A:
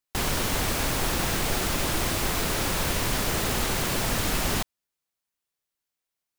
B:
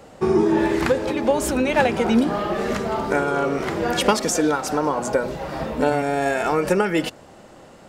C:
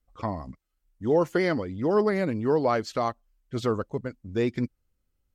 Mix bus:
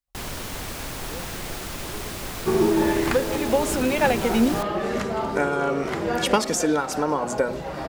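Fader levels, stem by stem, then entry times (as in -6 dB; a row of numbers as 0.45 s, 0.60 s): -6.5 dB, -2.0 dB, -19.5 dB; 0.00 s, 2.25 s, 0.00 s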